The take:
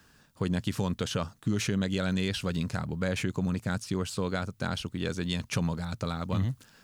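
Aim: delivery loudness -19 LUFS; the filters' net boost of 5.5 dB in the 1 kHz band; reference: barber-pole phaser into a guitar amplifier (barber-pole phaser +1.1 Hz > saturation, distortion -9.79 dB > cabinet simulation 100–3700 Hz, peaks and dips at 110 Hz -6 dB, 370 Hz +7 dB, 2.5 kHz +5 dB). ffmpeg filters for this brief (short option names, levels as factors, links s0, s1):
-filter_complex "[0:a]equalizer=f=1000:t=o:g=7,asplit=2[s0][s1];[s1]afreqshift=1.1[s2];[s0][s2]amix=inputs=2:normalize=1,asoftclip=threshold=0.0266,highpass=100,equalizer=f=110:t=q:w=4:g=-6,equalizer=f=370:t=q:w=4:g=7,equalizer=f=2500:t=q:w=4:g=5,lowpass=f=3700:w=0.5412,lowpass=f=3700:w=1.3066,volume=8.91"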